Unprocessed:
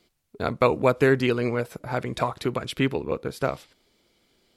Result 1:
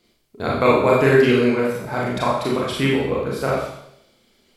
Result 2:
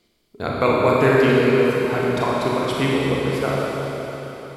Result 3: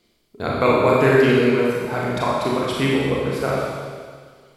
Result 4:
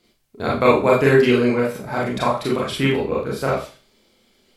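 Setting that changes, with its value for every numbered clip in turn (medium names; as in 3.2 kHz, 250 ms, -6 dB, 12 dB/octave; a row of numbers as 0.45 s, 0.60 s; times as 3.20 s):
Schroeder reverb, RT60: 0.75 s, 4 s, 1.8 s, 0.35 s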